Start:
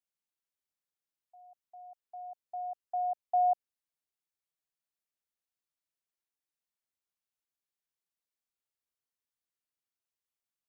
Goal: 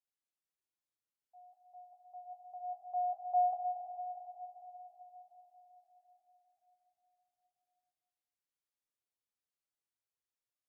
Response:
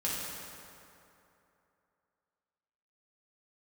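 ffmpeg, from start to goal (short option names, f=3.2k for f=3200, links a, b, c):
-filter_complex "[0:a]asplit=2[a][b];[1:a]atrim=start_sample=2205,asetrate=26019,aresample=44100[c];[b][c]afir=irnorm=-1:irlink=0,volume=-7.5dB[d];[a][d]amix=inputs=2:normalize=0,flanger=delay=5.8:depth=5.3:regen=-36:speed=0.37:shape=triangular,equalizer=f=560:w=1.5:g=2.5,volume=-7dB"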